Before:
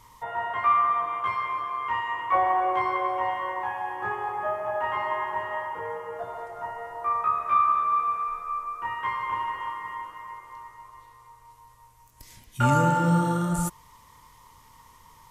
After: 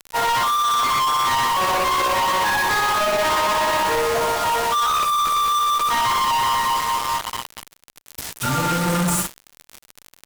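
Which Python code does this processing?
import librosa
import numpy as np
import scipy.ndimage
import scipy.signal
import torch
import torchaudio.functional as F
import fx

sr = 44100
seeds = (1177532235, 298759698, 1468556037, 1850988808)

p1 = scipy.signal.sosfilt(scipy.signal.butter(2, 51.0, 'highpass', fs=sr, output='sos'), x)
p2 = fx.high_shelf(p1, sr, hz=2100.0, db=5.5)
p3 = fx.notch(p2, sr, hz=730.0, q=12.0)
p4 = fx.over_compress(p3, sr, threshold_db=-27.0, ratio=-1.0)
p5 = p4 + fx.room_flutter(p4, sr, wall_m=7.7, rt60_s=0.58, dry=0)
p6 = fx.quant_dither(p5, sr, seeds[0], bits=6, dither='none')
p7 = fx.dmg_crackle(p6, sr, seeds[1], per_s=57.0, level_db=-39.0)
p8 = fx.fuzz(p7, sr, gain_db=40.0, gate_db=-43.0)
p9 = p7 + (p8 * 10.0 ** (-3.5 / 20.0))
p10 = fx.stretch_grains(p9, sr, factor=0.67, grain_ms=121.0)
y = np.clip(10.0 ** (18.0 / 20.0) * p10, -1.0, 1.0) / 10.0 ** (18.0 / 20.0)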